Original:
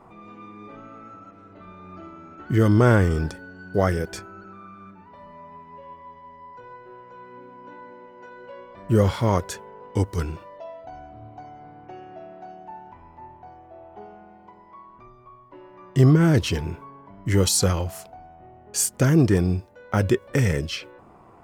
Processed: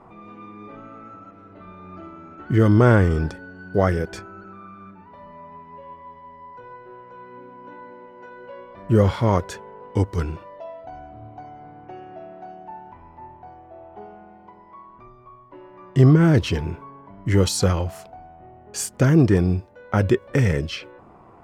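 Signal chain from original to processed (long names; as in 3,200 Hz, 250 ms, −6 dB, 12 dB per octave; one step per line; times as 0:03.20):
high-shelf EQ 5,700 Hz −11 dB
level +2 dB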